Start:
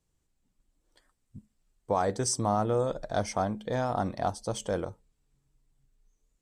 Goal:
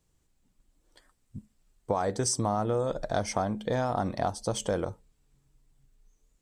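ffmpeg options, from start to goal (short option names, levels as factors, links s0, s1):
-af "acompressor=threshold=0.0316:ratio=4,volume=1.78"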